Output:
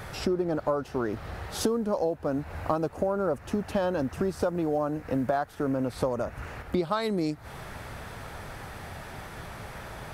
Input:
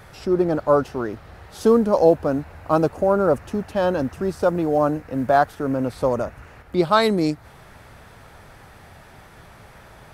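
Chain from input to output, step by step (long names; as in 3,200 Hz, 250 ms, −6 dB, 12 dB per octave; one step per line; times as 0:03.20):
downward compressor 12 to 1, threshold −29 dBFS, peak gain reduction 20 dB
level +5 dB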